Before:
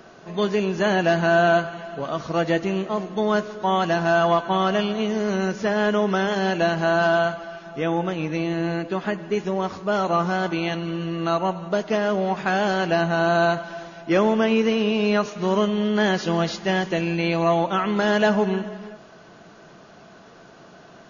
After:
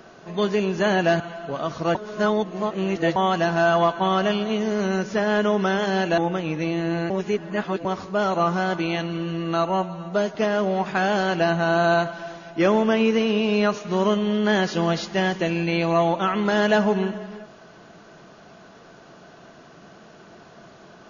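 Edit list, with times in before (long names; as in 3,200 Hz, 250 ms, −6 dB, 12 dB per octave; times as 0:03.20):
0:01.20–0:01.69: remove
0:02.44–0:03.65: reverse
0:06.67–0:07.91: remove
0:08.83–0:09.58: reverse
0:11.42–0:11.86: time-stretch 1.5×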